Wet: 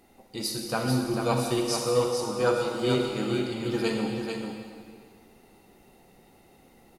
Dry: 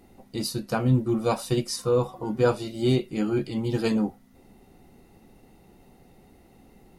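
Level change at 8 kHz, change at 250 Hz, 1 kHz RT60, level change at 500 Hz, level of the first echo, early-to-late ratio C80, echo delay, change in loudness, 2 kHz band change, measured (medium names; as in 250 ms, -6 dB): +3.0 dB, -3.0 dB, 1.9 s, -0.5 dB, -6.0 dB, 1.5 dB, 442 ms, -1.5 dB, +3.0 dB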